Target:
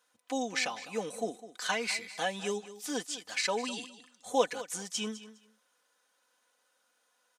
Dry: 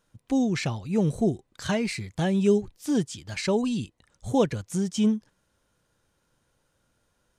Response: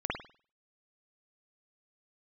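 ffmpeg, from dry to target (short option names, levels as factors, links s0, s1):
-filter_complex "[0:a]highpass=700,aecho=1:1:4:0.63,asplit=2[s0][s1];[s1]aecho=0:1:205|410:0.178|0.032[s2];[s0][s2]amix=inputs=2:normalize=0"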